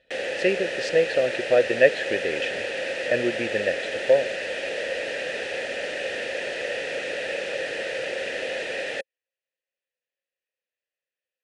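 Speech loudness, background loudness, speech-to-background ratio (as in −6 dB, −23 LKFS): −24.5 LKFS, −29.0 LKFS, 4.5 dB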